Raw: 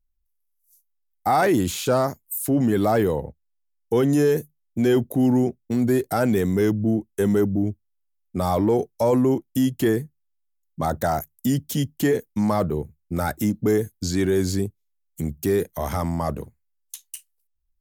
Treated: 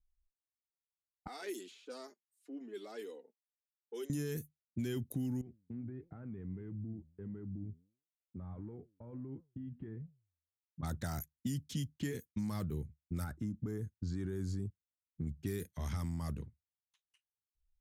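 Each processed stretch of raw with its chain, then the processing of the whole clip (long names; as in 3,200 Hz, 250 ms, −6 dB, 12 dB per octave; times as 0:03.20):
0:01.27–0:04.10: Butterworth high-pass 330 Hz + parametric band 1,300 Hz −9 dB 2 octaves + flanger 1.6 Hz, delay 3.9 ms, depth 1.4 ms, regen +5%
0:05.41–0:10.83: downward compressor 8 to 1, threshold −24 dBFS + high-frequency loss of the air 490 metres + flanger 1.5 Hz, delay 5.5 ms, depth 7.5 ms, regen +88%
0:13.24–0:15.27: high shelf with overshoot 1,800 Hz −10 dB, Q 1.5 + downward compressor 4 to 1, threshold −21 dBFS
whole clip: low-pass that shuts in the quiet parts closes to 530 Hz, open at −20 dBFS; guitar amp tone stack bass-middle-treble 6-0-2; downward compressor, threshold −41 dBFS; level +7.5 dB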